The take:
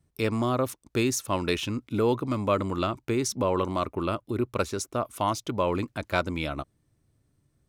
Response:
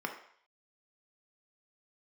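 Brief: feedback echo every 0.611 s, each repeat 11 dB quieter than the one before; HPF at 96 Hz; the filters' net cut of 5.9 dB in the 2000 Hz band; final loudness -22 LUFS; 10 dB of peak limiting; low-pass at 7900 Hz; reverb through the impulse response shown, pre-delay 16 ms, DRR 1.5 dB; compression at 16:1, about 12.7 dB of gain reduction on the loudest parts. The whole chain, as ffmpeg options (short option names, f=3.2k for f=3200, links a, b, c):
-filter_complex "[0:a]highpass=96,lowpass=7.9k,equalizer=f=2k:t=o:g=-8.5,acompressor=threshold=-33dB:ratio=16,alimiter=level_in=3.5dB:limit=-24dB:level=0:latency=1,volume=-3.5dB,aecho=1:1:611|1222|1833:0.282|0.0789|0.0221,asplit=2[a][b];[1:a]atrim=start_sample=2205,adelay=16[c];[b][c]afir=irnorm=-1:irlink=0,volume=-6dB[d];[a][d]amix=inputs=2:normalize=0,volume=16.5dB"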